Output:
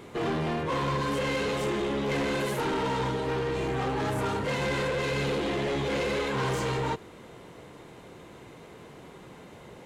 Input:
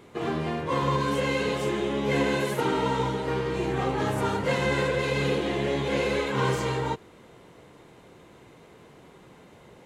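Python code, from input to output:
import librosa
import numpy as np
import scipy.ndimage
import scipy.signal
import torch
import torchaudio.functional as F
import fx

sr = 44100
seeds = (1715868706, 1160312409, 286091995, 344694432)

p1 = fx.rider(x, sr, range_db=10, speed_s=0.5)
p2 = x + F.gain(torch.from_numpy(p1), 3.0).numpy()
p3 = fx.notch_comb(p2, sr, f0_hz=180.0, at=(3.11, 4.61))
p4 = 10.0 ** (-20.0 / 20.0) * np.tanh(p3 / 10.0 ** (-20.0 / 20.0))
y = F.gain(torch.from_numpy(p4), -5.0).numpy()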